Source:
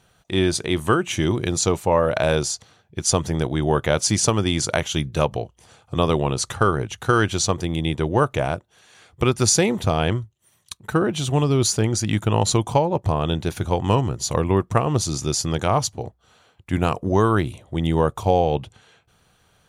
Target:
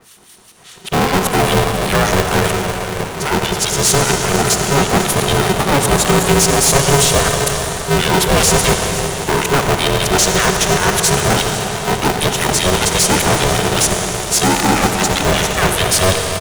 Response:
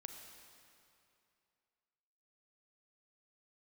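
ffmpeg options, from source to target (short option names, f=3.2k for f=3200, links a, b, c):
-filter_complex "[0:a]areverse,aemphasis=mode=production:type=75fm,acrossover=split=230|1500[a][b][c];[c]alimiter=limit=-5dB:level=0:latency=1:release=163[d];[a][b][d]amix=inputs=3:normalize=0,aeval=exprs='0.708*sin(PI/2*2.51*val(0)/0.708)':c=same,acrossover=split=1300[e][f];[e]aeval=exprs='val(0)*(1-1/2+1/2*cos(2*PI*4.2*n/s))':c=same[g];[f]aeval=exprs='val(0)*(1-1/2-1/2*cos(2*PI*4.2*n/s))':c=same[h];[g][h]amix=inputs=2:normalize=0,asoftclip=type=hard:threshold=-13.5dB,atempo=1.2,aecho=1:1:497:0.168[i];[1:a]atrim=start_sample=2205,asetrate=23373,aresample=44100[j];[i][j]afir=irnorm=-1:irlink=0,aeval=exprs='val(0)*sgn(sin(2*PI*280*n/s))':c=same,volume=5dB"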